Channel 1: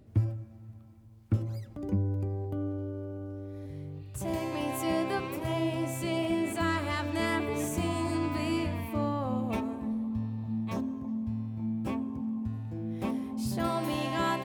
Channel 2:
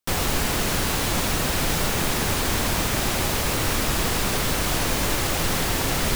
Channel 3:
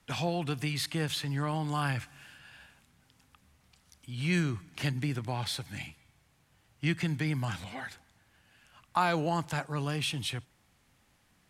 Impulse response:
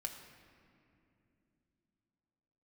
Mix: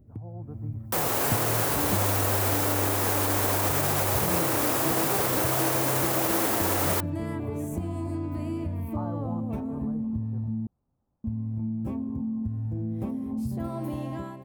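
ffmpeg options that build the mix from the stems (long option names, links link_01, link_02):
-filter_complex "[0:a]lowshelf=frequency=180:gain=8,acompressor=threshold=-36dB:ratio=6,volume=-3dB,asplit=3[link_01][link_02][link_03];[link_01]atrim=end=10.67,asetpts=PTS-STARTPTS,afade=type=out:start_time=10.666:duration=0.004:curve=hsin[link_04];[link_02]atrim=start=10.67:end=11.24,asetpts=PTS-STARTPTS,volume=0[link_05];[link_03]atrim=start=11.24,asetpts=PTS-STARTPTS,afade=type=in:duration=0.004:curve=hsin[link_06];[link_04][link_05][link_06]concat=n=3:v=0:a=1[link_07];[1:a]highpass=470,alimiter=limit=-22.5dB:level=0:latency=1:release=101,adelay=850,volume=0.5dB[link_08];[2:a]lowpass=frequency=1100:width=0.5412,lowpass=frequency=1100:width=1.3066,volume=-17.5dB[link_09];[link_07][link_08][link_09]amix=inputs=3:normalize=0,equalizer=frequency=3600:width=0.39:gain=-14,dynaudnorm=framelen=110:gausssize=7:maxgain=11dB"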